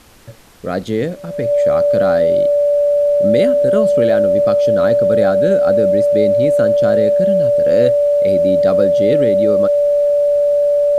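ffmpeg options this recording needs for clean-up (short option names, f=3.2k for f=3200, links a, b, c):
-af "bandreject=f=580:w=30,agate=range=-21dB:threshold=-12dB"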